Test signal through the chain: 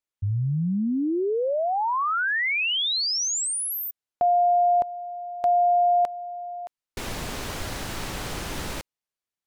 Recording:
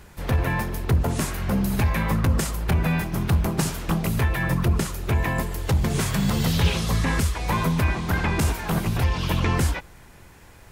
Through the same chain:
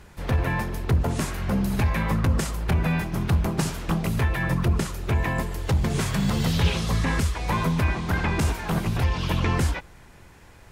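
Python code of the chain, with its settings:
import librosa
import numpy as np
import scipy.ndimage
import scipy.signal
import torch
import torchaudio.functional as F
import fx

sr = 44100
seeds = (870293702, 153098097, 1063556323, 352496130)

y = fx.high_shelf(x, sr, hz=12000.0, db=-10.5)
y = F.gain(torch.from_numpy(y), -1.0).numpy()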